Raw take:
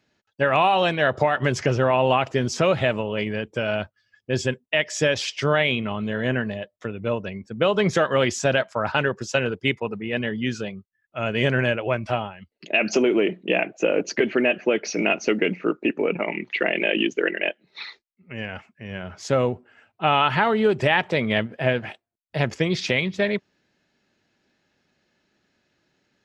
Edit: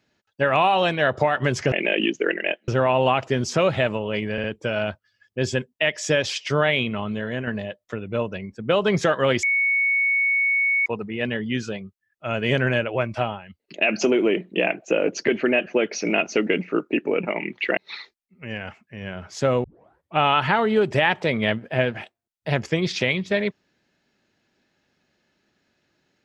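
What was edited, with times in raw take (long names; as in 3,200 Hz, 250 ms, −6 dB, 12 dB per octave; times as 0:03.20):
0:03.36: stutter 0.06 s, 3 plays
0:06.01–0:06.39: fade out, to −7.5 dB
0:08.35–0:09.78: beep over 2,220 Hz −17.5 dBFS
0:16.69–0:17.65: move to 0:01.72
0:19.52: tape start 0.54 s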